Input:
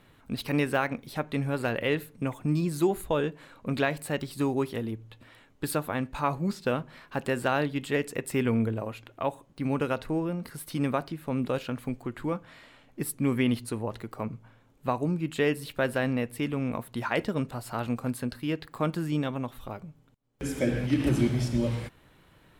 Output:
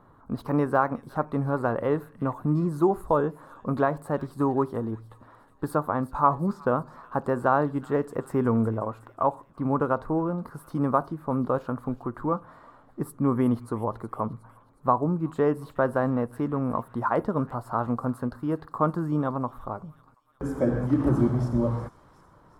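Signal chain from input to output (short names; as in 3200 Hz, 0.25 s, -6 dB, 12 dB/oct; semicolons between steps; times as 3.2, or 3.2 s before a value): resonant high shelf 1700 Hz -14 dB, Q 3; on a send: thin delay 0.365 s, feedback 56%, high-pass 2500 Hz, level -12.5 dB; on the sum: gain +2 dB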